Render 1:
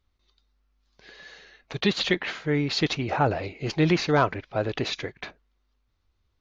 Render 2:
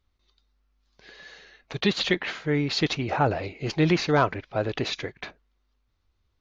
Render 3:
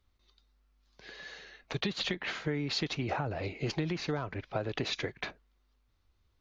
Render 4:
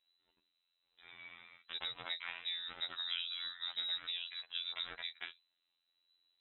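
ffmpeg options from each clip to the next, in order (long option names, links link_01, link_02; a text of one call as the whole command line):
ffmpeg -i in.wav -af anull out.wav
ffmpeg -i in.wav -filter_complex "[0:a]acrossover=split=190[link_01][link_02];[link_02]alimiter=limit=-16dB:level=0:latency=1:release=314[link_03];[link_01][link_03]amix=inputs=2:normalize=0,acompressor=threshold=-29dB:ratio=12" out.wav
ffmpeg -i in.wav -filter_complex "[0:a]afftfilt=real='hypot(re,im)*cos(PI*b)':imag='0':win_size=2048:overlap=0.75,acrossover=split=3100[link_01][link_02];[link_02]acompressor=threshold=-46dB:ratio=4:attack=1:release=60[link_03];[link_01][link_03]amix=inputs=2:normalize=0,lowpass=frequency=3400:width_type=q:width=0.5098,lowpass=frequency=3400:width_type=q:width=0.6013,lowpass=frequency=3400:width_type=q:width=0.9,lowpass=frequency=3400:width_type=q:width=2.563,afreqshift=-4000,volume=-3dB" out.wav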